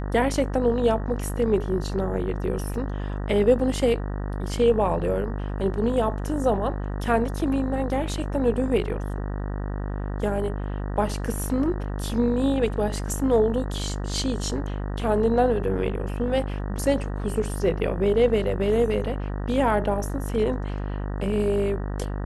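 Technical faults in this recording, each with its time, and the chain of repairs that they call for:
mains buzz 50 Hz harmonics 38 −29 dBFS
0:02.74: drop-out 2.3 ms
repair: hum removal 50 Hz, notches 38
repair the gap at 0:02.74, 2.3 ms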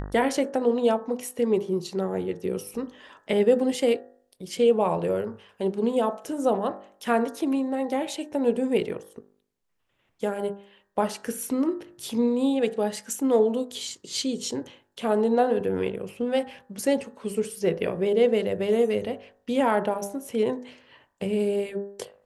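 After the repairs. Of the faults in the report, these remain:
none of them is left

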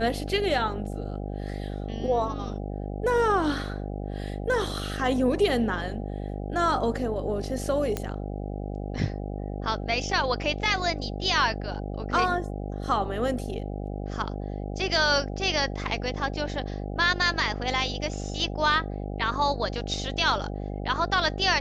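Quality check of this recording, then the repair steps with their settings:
mains buzz 50 Hz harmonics 16 −33 dBFS
0:07.97: click −14 dBFS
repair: click removal
hum removal 50 Hz, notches 16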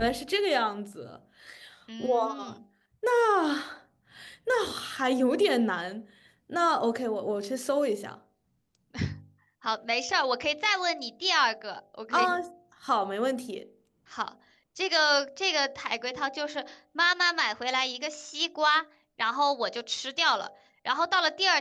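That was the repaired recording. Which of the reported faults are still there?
none of them is left

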